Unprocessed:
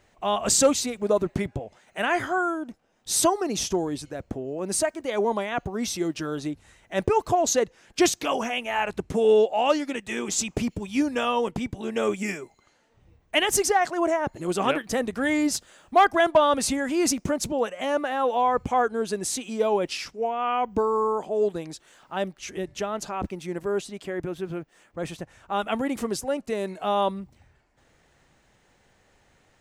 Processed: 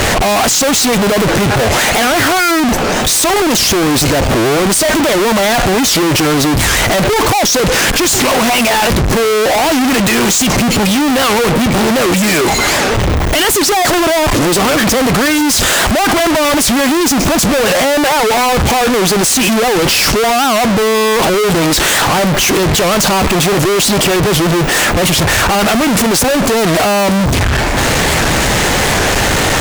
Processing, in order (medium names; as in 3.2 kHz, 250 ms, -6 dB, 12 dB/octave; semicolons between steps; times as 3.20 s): power-law waveshaper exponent 0.5; fuzz box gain 42 dB, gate -48 dBFS; warped record 78 rpm, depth 250 cents; trim +2.5 dB